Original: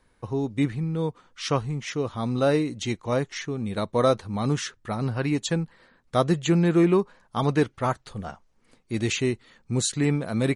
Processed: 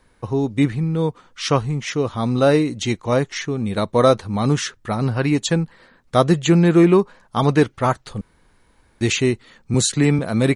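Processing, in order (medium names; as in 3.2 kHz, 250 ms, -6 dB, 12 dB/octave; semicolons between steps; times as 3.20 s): 8.21–9.01 s: room tone; 9.74–10.19 s: three bands compressed up and down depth 40%; trim +6.5 dB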